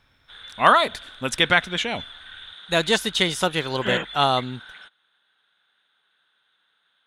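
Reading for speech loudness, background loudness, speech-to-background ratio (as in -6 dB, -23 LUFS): -21.5 LUFS, -40.0 LUFS, 18.5 dB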